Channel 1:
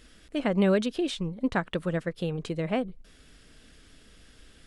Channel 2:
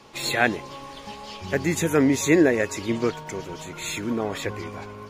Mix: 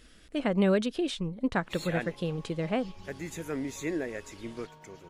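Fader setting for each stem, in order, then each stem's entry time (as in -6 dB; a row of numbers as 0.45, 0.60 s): -1.5, -15.0 dB; 0.00, 1.55 s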